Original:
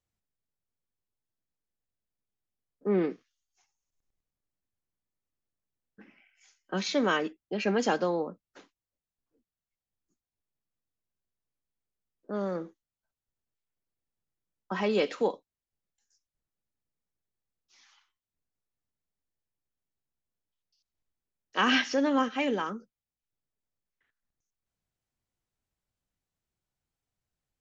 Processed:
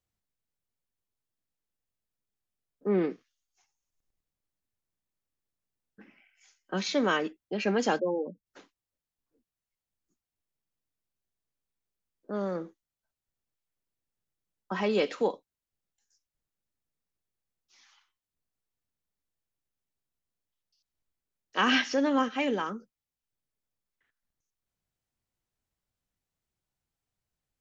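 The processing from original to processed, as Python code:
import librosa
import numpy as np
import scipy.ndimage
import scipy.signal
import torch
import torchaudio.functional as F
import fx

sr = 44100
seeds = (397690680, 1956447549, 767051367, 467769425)

y = fx.spec_gate(x, sr, threshold_db=-10, keep='strong', at=(7.98, 8.45), fade=0.02)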